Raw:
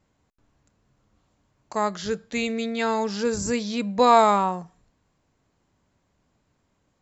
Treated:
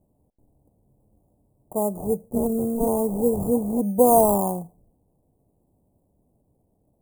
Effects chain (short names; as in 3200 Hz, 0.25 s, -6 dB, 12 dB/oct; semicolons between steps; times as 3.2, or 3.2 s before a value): decimation with a swept rate 19×, swing 60% 0.47 Hz; inverse Chebyshev band-stop 1500–4900 Hz, stop band 50 dB; gain +4 dB